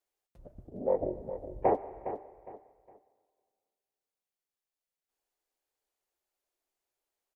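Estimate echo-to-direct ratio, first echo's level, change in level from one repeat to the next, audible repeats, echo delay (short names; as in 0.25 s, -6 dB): -10.5 dB, -11.0 dB, -11.0 dB, 3, 0.41 s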